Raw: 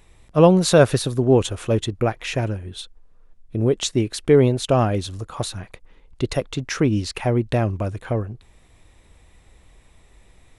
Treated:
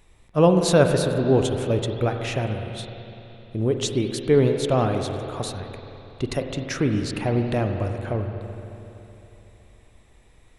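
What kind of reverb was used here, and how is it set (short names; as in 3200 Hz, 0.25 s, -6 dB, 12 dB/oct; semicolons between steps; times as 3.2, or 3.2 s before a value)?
spring tank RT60 3.3 s, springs 42/46 ms, chirp 60 ms, DRR 4.5 dB; gain -3.5 dB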